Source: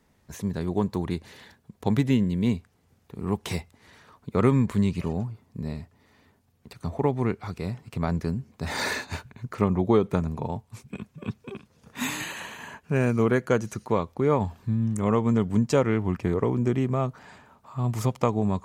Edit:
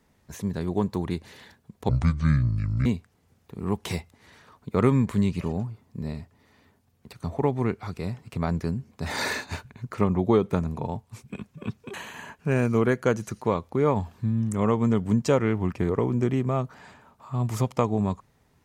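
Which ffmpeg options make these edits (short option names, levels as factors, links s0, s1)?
-filter_complex "[0:a]asplit=4[s0][s1][s2][s3];[s0]atrim=end=1.894[s4];[s1]atrim=start=1.89:end=2.46,asetpts=PTS-STARTPTS,asetrate=26019,aresample=44100,atrim=end_sample=42605,asetpts=PTS-STARTPTS[s5];[s2]atrim=start=2.456:end=11.542[s6];[s3]atrim=start=12.378[s7];[s4][s5]acrossfade=d=0.004:c1=hsin:c2=hsin[s8];[s8][s6]acrossfade=d=0.004:c1=hsin:c2=hsin[s9];[s9][s7]acrossfade=d=0.004:c1=hsin:c2=hsin"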